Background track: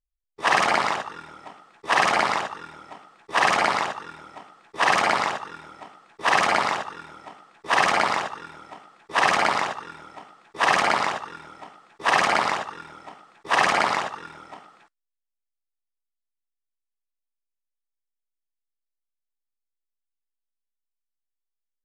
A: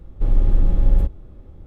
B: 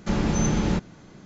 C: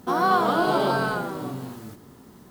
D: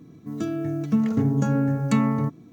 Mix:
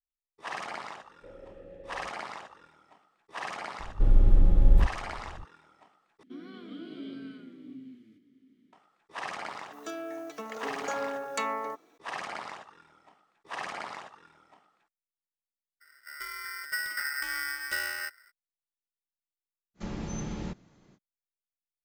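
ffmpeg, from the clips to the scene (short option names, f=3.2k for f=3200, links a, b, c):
-filter_complex "[1:a]asplit=2[a][b];[4:a]asplit=2[c][d];[0:a]volume=-17.5dB[e];[a]asplit=3[f][g][h];[f]bandpass=f=530:t=q:w=8,volume=0dB[i];[g]bandpass=f=1.84k:t=q:w=8,volume=-6dB[j];[h]bandpass=f=2.48k:t=q:w=8,volume=-9dB[k];[i][j][k]amix=inputs=3:normalize=0[l];[3:a]asplit=3[m][n][o];[m]bandpass=f=270:t=q:w=8,volume=0dB[p];[n]bandpass=f=2.29k:t=q:w=8,volume=-6dB[q];[o]bandpass=f=3.01k:t=q:w=8,volume=-9dB[r];[p][q][r]amix=inputs=3:normalize=0[s];[c]highpass=f=480:w=0.5412,highpass=f=480:w=1.3066[t];[d]aeval=exprs='val(0)*sgn(sin(2*PI*1700*n/s))':c=same[u];[2:a]bandreject=f=1.5k:w=22[v];[e]asplit=2[w][x];[w]atrim=end=6.234[y];[s]atrim=end=2.5,asetpts=PTS-STARTPTS,volume=-6dB[z];[x]atrim=start=8.726[aa];[l]atrim=end=1.66,asetpts=PTS-STARTPTS,volume=-3.5dB,afade=t=in:d=0.004:c=hsin,afade=t=out:st=1.656:d=0.004:c=hsin,adelay=1020[ab];[b]atrim=end=1.66,asetpts=PTS-STARTPTS,volume=-3.5dB,afade=t=in:d=0.004:c=hsin,afade=t=out:st=1.656:d=0.004:c=hsin,adelay=3790[ac];[t]atrim=end=2.52,asetpts=PTS-STARTPTS,volume=-0.5dB,afade=t=in:d=0.004:c=hsin,afade=t=out:st=2.516:d=0.004:c=hsin,adelay=417186S[ad];[u]atrim=end=2.52,asetpts=PTS-STARTPTS,volume=-12.5dB,afade=t=in:d=0.02,afade=t=out:st=2.5:d=0.02,adelay=15800[ae];[v]atrim=end=1.25,asetpts=PTS-STARTPTS,volume=-13dB,afade=t=in:d=0.05,afade=t=out:st=1.2:d=0.05,adelay=19740[af];[y][z]acrossfade=d=0.004:c1=hsin:c2=hsin[ag];[ag][aa]acrossfade=d=0.004:c1=hsin:c2=hsin[ah];[ah][ab][ac][ad][ae][af]amix=inputs=6:normalize=0"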